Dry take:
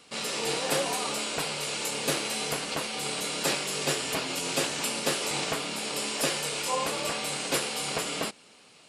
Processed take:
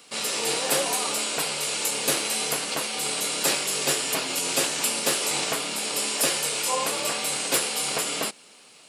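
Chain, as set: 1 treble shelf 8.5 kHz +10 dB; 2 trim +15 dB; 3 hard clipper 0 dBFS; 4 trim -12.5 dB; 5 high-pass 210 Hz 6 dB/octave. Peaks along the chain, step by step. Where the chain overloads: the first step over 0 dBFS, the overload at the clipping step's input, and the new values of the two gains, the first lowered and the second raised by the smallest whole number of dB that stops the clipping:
-10.5 dBFS, +4.5 dBFS, 0.0 dBFS, -12.5 dBFS, -11.0 dBFS; step 2, 4.5 dB; step 2 +10 dB, step 4 -7.5 dB

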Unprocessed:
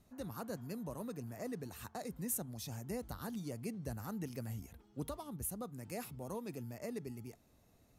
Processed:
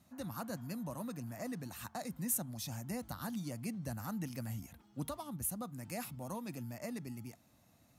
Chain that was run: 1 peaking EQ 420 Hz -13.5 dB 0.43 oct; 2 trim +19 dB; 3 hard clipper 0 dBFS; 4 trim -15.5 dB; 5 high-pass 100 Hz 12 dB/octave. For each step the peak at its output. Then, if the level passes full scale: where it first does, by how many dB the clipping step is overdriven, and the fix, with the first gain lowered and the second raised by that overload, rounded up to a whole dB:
-24.0 dBFS, -5.0 dBFS, -5.0 dBFS, -20.5 dBFS, -20.5 dBFS; nothing clips

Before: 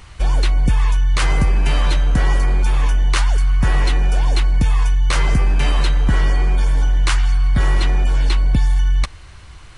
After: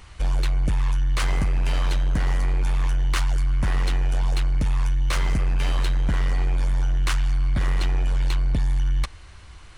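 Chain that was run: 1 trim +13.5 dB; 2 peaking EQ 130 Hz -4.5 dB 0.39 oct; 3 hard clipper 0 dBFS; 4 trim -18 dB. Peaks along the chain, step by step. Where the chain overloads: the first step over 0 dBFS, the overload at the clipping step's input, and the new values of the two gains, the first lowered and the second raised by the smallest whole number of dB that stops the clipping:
+6.5 dBFS, +7.0 dBFS, 0.0 dBFS, -18.0 dBFS; step 1, 7.0 dB; step 1 +6.5 dB, step 4 -11 dB

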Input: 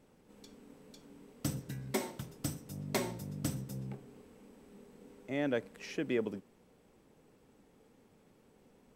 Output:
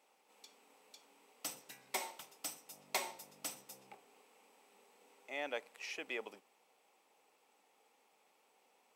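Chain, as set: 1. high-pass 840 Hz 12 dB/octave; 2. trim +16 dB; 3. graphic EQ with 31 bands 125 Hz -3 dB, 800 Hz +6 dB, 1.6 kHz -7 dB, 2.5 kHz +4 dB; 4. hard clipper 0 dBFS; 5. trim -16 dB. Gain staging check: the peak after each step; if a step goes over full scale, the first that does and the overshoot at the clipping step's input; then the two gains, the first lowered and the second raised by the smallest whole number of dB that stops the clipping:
-19.5 dBFS, -3.5 dBFS, -3.5 dBFS, -3.5 dBFS, -19.5 dBFS; nothing clips

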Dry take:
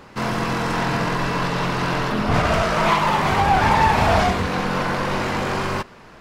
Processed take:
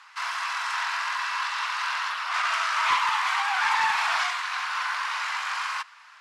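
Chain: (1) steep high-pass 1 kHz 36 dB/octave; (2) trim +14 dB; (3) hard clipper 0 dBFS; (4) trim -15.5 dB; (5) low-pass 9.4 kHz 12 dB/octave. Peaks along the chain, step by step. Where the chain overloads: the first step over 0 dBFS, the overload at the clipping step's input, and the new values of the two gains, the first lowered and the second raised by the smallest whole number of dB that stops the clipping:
-8.5 dBFS, +5.5 dBFS, 0.0 dBFS, -15.5 dBFS, -15.0 dBFS; step 2, 5.5 dB; step 2 +8 dB, step 4 -9.5 dB

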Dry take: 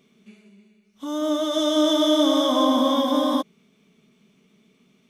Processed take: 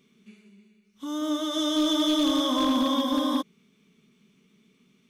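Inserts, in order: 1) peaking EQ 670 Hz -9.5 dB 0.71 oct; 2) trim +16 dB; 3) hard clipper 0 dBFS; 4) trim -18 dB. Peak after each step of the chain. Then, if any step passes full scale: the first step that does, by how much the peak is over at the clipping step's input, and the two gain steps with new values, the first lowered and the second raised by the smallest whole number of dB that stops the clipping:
-9.0 dBFS, +7.0 dBFS, 0.0 dBFS, -18.0 dBFS; step 2, 7.0 dB; step 2 +9 dB, step 4 -11 dB

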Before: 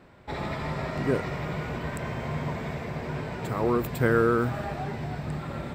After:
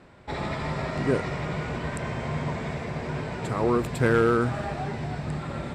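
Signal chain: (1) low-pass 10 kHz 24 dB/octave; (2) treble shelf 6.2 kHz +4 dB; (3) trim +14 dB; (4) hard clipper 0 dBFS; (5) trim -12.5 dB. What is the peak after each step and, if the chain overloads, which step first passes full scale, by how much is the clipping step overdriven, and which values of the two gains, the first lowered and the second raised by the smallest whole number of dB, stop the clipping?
-9.0 dBFS, -9.0 dBFS, +5.0 dBFS, 0.0 dBFS, -12.5 dBFS; step 3, 5.0 dB; step 3 +9 dB, step 5 -7.5 dB

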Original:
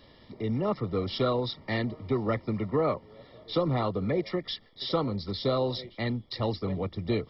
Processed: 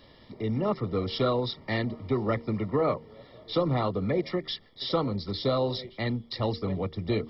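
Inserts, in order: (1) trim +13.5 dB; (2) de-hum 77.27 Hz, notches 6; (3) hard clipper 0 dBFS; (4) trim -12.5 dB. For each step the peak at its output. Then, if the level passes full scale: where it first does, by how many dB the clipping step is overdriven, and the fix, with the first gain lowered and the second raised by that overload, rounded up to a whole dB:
-1.5 dBFS, -2.0 dBFS, -2.0 dBFS, -14.5 dBFS; nothing clips

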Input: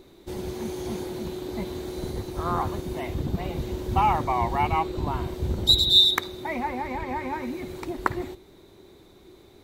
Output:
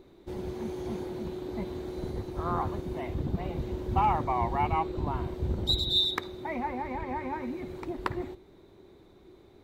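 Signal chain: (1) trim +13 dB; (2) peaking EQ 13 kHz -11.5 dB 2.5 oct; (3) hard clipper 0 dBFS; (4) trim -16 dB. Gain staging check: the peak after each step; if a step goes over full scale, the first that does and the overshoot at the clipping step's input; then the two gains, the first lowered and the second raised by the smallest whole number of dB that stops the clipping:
+10.0 dBFS, +9.0 dBFS, 0.0 dBFS, -16.0 dBFS; step 1, 9.0 dB; step 1 +4 dB, step 4 -7 dB

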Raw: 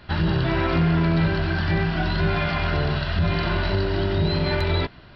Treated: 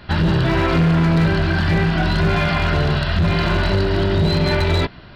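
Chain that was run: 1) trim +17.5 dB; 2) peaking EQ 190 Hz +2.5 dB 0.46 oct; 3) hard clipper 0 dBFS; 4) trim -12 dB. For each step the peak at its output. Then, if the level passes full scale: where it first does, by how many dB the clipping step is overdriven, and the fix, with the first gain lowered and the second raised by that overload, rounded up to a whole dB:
+6.5 dBFS, +7.0 dBFS, 0.0 dBFS, -12.0 dBFS; step 1, 7.0 dB; step 1 +10.5 dB, step 4 -5 dB

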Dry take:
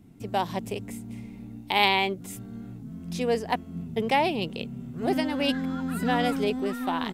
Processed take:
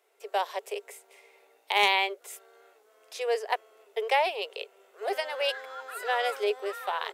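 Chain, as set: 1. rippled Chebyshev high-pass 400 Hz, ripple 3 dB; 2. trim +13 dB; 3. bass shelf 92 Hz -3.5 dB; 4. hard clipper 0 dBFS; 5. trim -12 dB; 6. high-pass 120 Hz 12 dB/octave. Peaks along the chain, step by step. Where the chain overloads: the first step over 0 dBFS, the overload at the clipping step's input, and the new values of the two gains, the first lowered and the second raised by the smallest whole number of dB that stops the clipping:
-7.5 dBFS, +5.5 dBFS, +5.5 dBFS, 0.0 dBFS, -12.0 dBFS, -11.5 dBFS; step 2, 5.5 dB; step 2 +7 dB, step 5 -6 dB

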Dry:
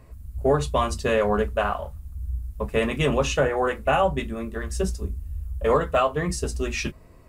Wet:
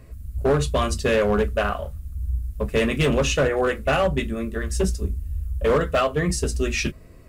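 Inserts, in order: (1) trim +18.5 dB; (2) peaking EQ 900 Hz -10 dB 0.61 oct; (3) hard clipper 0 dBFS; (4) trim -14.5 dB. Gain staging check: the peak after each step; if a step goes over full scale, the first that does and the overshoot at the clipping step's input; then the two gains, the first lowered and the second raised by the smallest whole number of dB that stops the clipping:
+8.5 dBFS, +7.5 dBFS, 0.0 dBFS, -14.5 dBFS; step 1, 7.5 dB; step 1 +10.5 dB, step 4 -6.5 dB

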